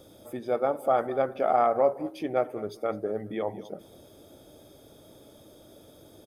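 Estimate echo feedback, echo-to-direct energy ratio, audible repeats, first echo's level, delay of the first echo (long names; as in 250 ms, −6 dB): 16%, −18.5 dB, 2, −18.5 dB, 207 ms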